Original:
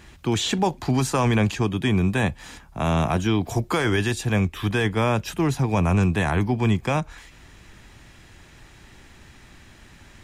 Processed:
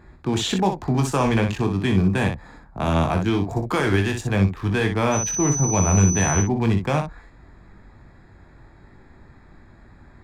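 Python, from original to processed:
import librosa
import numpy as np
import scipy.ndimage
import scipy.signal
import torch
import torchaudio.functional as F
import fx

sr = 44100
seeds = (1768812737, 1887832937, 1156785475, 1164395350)

y = fx.wiener(x, sr, points=15)
y = fx.dmg_tone(y, sr, hz=6000.0, level_db=-29.0, at=(5.11, 6.41), fade=0.02)
y = fx.room_early_taps(y, sr, ms=(21, 61), db=(-7.0, -7.0))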